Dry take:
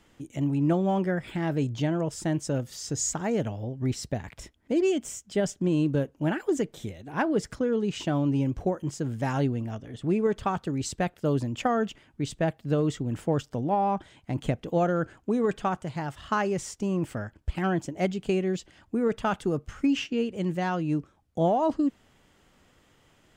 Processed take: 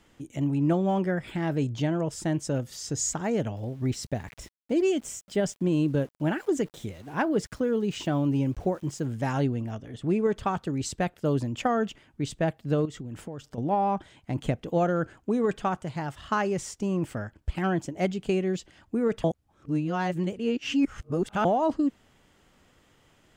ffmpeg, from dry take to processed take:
-filter_complex "[0:a]asettb=1/sr,asplit=3[a][b][c];[a]atrim=end=3.564[d];[b]atrim=start=3.56:end=9.06,asetpts=PTS-STARTPTS,afade=t=in:d=0.004:c=qsin,afade=t=out:st=5.496:d=0.004:c=qsin,aeval=exprs='val(0)*gte(abs(val(0)),0.00282)':c=same[e];[c]atrim=start=9.056[f];[d][e]acrossfade=d=0.004:c1=hsin:c2=qsin[g];[g][f]acrossfade=d=0.004:c1=qsin:c2=hsin,asettb=1/sr,asplit=3[h][i][j];[h]atrim=end=12.854[k];[i]atrim=start=12.85:end=13.58,asetpts=PTS-STARTPTS,afade=t=in:d=0.004:c=qsin,afade=t=out:st=0.726:d=0.004:c=qsin,acompressor=threshold=-34dB:ratio=6:attack=3.2:release=140:knee=1:detection=peak[l];[j]atrim=start=13.576[m];[k][l]acrossfade=d=0.004:c1=hsin:c2=qsin[n];[n][m]acrossfade=d=0.004:c1=qsin:c2=hsin,asplit=3[o][p][q];[o]atrim=end=19.242[r];[p]atrim=start=19.238:end=21.452,asetpts=PTS-STARTPTS,areverse[s];[q]atrim=start=21.448[t];[r][s]acrossfade=d=0.004:c1=hsin:c2=hsin[u];[u][t]acrossfade=d=0.004:c1=hsin:c2=hsin"

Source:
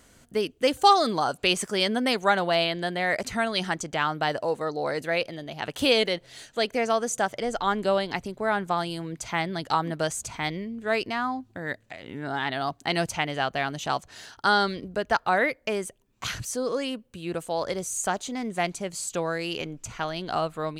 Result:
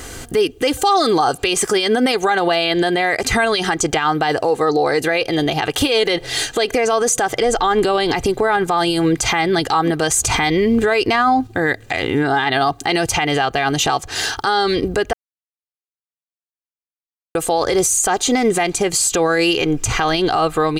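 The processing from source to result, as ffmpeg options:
-filter_complex "[0:a]asettb=1/sr,asplit=3[a][b][c];[a]atrim=end=5.874[d];[b]atrim=start=5.87:end=8.57,asetpts=PTS-STARTPTS,afade=t=in:d=0.004:c=qsin,afade=t=out:st=2.696:d=0.004:c=qsin,acompressor=threshold=-26dB:ratio=6:attack=3.2:release=140:knee=1:detection=peak[e];[c]atrim=start=8.566[f];[d][e]acrossfade=d=0.004:c1=hsin:c2=qsin[g];[g][f]acrossfade=d=0.004:c1=qsin:c2=hsin,asplit=5[h][i][j][k][l];[h]atrim=end=10.142[m];[i]atrim=start=10.138:end=11.472,asetpts=PTS-STARTPTS,volume=6.5dB[n];[j]atrim=start=11.468:end=15.13,asetpts=PTS-STARTPTS,afade=t=out:st=3.658:d=0.004:c=hsin[o];[k]atrim=start=15.13:end=17.35,asetpts=PTS-STARTPTS,volume=0[p];[l]atrim=start=17.35,asetpts=PTS-STARTPTS,afade=t=in:d=0.004:c=hsin[q];[m][n]acrossfade=d=0.004:c1=hsin:c2=hsin[r];[o][p][q]concat=n=3:v=0:a=1[s];[r][s]acrossfade=d=0.004:c1=hsin:c2=hsin,aecho=1:1:2.5:0.59,acompressor=threshold=-34dB:ratio=2.5,alimiter=level_in=29dB:limit=-1dB:release=50:level=0:latency=1,volume=-6.5dB"

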